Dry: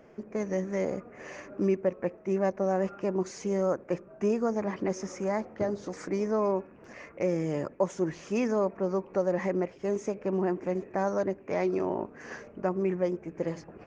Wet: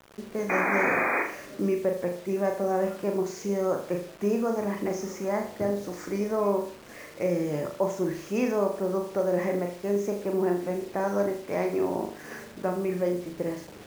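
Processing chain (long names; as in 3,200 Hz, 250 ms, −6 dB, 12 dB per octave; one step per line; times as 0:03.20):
sound drawn into the spectrogram noise, 0:00.49–0:01.23, 230–2,500 Hz −27 dBFS
flutter between parallel walls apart 6.8 metres, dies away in 0.47 s
bit reduction 8 bits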